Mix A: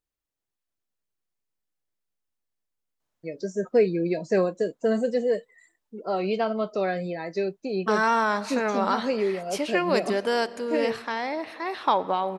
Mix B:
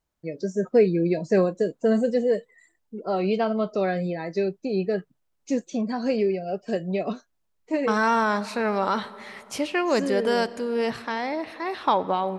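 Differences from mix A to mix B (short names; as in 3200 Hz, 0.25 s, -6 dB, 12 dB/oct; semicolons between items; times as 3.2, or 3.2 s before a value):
first voice: entry -3.00 s; master: add low shelf 240 Hz +8 dB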